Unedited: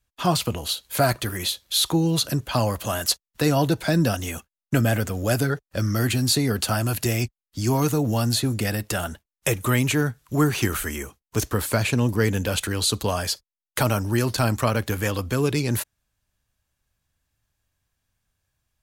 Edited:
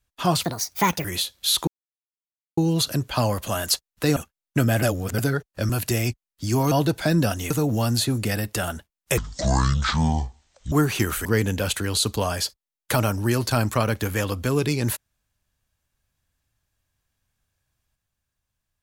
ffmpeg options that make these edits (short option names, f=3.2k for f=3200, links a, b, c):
-filter_complex "[0:a]asplit=13[a][b][c][d][e][f][g][h][i][j][k][l][m];[a]atrim=end=0.434[n];[b]atrim=start=0.43:end=1.32,asetpts=PTS-STARTPTS,asetrate=63945,aresample=44100,atrim=end_sample=27068,asetpts=PTS-STARTPTS[o];[c]atrim=start=1.316:end=1.95,asetpts=PTS-STARTPTS,afade=t=out:st=0.63:d=0.004:c=hsin,apad=pad_dur=0.9[p];[d]atrim=start=1.95:end=3.542,asetpts=PTS-STARTPTS,afade=t=in:d=0.004:c=hsin[q];[e]atrim=start=4.328:end=4.992[r];[f]atrim=start=4.988:end=5.352,asetpts=PTS-STARTPTS,areverse[s];[g]atrim=start=5.348:end=5.862[t];[h]atrim=start=6.838:end=7.862[u];[i]atrim=start=3.538:end=4.332[v];[j]atrim=start=7.858:end=9.534[w];[k]atrim=start=9.53:end=10.35,asetpts=PTS-STARTPTS,asetrate=23373,aresample=44100,atrim=end_sample=68230,asetpts=PTS-STARTPTS[x];[l]atrim=start=10.346:end=10.882[y];[m]atrim=start=12.118[z];[n][o]acrossfade=d=0.004:c1=hsin:c2=hsin[aa];[p][q]concat=n=2:v=0:a=1[ab];[aa][ab]acrossfade=d=0.004:c1=hsin:c2=hsin[ac];[ac][r]acrossfade=d=0.004:c1=hsin:c2=hsin[ad];[ad][s]acrossfade=d=0.004:c1=hsin:c2=hsin[ae];[ae][t]acrossfade=d=0.004:c1=hsin:c2=hsin[af];[af][u]acrossfade=d=0.004:c1=hsin:c2=hsin[ag];[ag][v]acrossfade=d=0.004:c1=hsin:c2=hsin[ah];[ah][w]acrossfade=d=0.004:c1=hsin:c2=hsin[ai];[ai][x]acrossfade=d=0.004:c1=hsin:c2=hsin[aj];[aj][y]acrossfade=d=0.004:c1=hsin:c2=hsin[ak];[ak][z]acrossfade=d=0.004:c1=hsin:c2=hsin"